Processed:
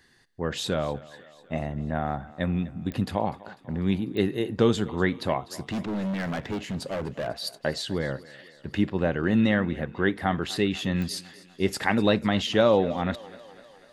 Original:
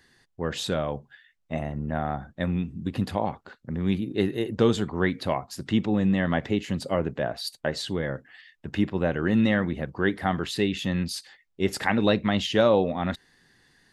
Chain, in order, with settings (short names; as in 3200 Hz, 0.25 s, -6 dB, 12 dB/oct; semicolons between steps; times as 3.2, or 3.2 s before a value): 5.63–7.28 hard clip -26.5 dBFS, distortion -12 dB; thinning echo 0.248 s, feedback 63%, high-pass 210 Hz, level -19.5 dB; pops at 2.92/4.17/11.02, -22 dBFS